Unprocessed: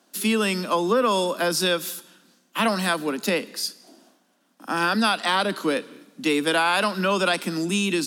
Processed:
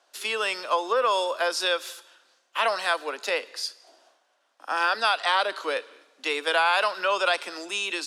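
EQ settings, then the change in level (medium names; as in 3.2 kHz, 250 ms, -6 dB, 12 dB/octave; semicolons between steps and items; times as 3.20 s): high-pass 500 Hz 24 dB/octave; distance through air 64 m; 0.0 dB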